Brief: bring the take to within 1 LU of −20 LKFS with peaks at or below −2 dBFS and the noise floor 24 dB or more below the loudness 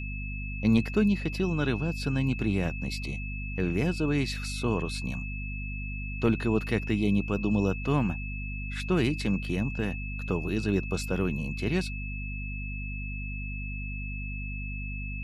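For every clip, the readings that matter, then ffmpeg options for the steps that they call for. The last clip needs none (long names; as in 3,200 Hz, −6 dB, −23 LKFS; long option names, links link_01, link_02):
mains hum 50 Hz; hum harmonics up to 250 Hz; level of the hum −33 dBFS; interfering tone 2,600 Hz; level of the tone −39 dBFS; integrated loudness −30.0 LKFS; sample peak −12.5 dBFS; target loudness −20.0 LKFS
→ -af "bandreject=frequency=50:width_type=h:width=4,bandreject=frequency=100:width_type=h:width=4,bandreject=frequency=150:width_type=h:width=4,bandreject=frequency=200:width_type=h:width=4,bandreject=frequency=250:width_type=h:width=4"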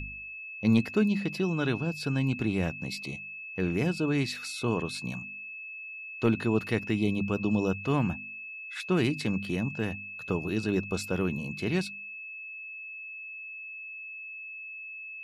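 mains hum none found; interfering tone 2,600 Hz; level of the tone −39 dBFS
→ -af "bandreject=frequency=2600:width=30"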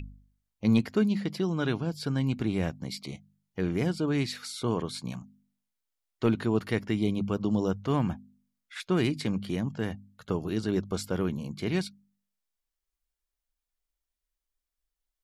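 interfering tone none found; integrated loudness −30.0 LKFS; sample peak −13.5 dBFS; target loudness −20.0 LKFS
→ -af "volume=10dB"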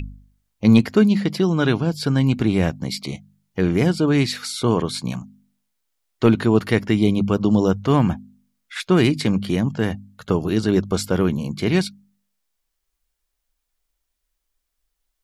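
integrated loudness −20.0 LKFS; sample peak −3.5 dBFS; background noise floor −77 dBFS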